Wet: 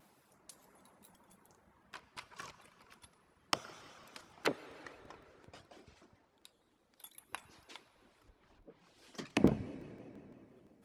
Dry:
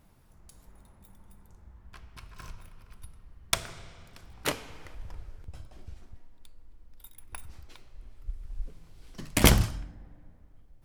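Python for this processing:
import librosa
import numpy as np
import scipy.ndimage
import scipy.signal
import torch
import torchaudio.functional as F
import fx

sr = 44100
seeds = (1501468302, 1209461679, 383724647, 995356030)

y = fx.dereverb_blind(x, sr, rt60_s=0.8)
y = fx.env_lowpass_down(y, sr, base_hz=380.0, full_db=-26.5)
y = scipy.signal.sosfilt(scipy.signal.butter(2, 270.0, 'highpass', fs=sr, output='sos'), y)
y = fx.rev_plate(y, sr, seeds[0], rt60_s=3.6, hf_ratio=0.7, predelay_ms=0, drr_db=14.5)
y = fx.buffer_crackle(y, sr, first_s=0.46, period_s=0.17, block=128, kind='repeat')
y = fx.vibrato_shape(y, sr, shape='square', rate_hz=5.9, depth_cents=100.0)
y = F.gain(torch.from_numpy(y), 2.0).numpy()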